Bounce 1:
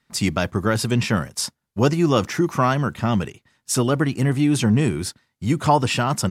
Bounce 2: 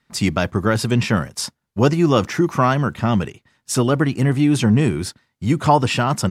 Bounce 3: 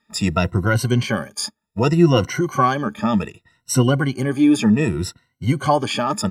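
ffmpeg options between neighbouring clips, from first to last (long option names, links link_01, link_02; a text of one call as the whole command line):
ffmpeg -i in.wav -af "highshelf=frequency=5400:gain=-5,volume=2.5dB" out.wav
ffmpeg -i in.wav -af "afftfilt=real='re*pow(10,19/40*sin(2*PI*(2*log(max(b,1)*sr/1024/100)/log(2)-(0.65)*(pts-256)/sr)))':imag='im*pow(10,19/40*sin(2*PI*(2*log(max(b,1)*sr/1024/100)/log(2)-(0.65)*(pts-256)/sr)))':win_size=1024:overlap=0.75,volume=-4.5dB" out.wav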